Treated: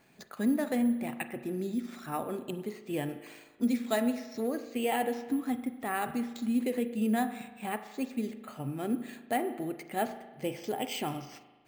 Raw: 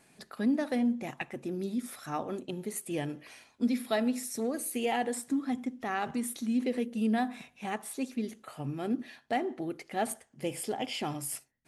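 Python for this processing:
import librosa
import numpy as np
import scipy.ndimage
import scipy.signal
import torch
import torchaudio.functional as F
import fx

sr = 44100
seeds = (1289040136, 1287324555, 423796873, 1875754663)

y = np.repeat(scipy.signal.resample_poly(x, 1, 4), 4)[:len(x)]
y = fx.rev_spring(y, sr, rt60_s=1.3, pass_ms=(38,), chirp_ms=30, drr_db=11.0)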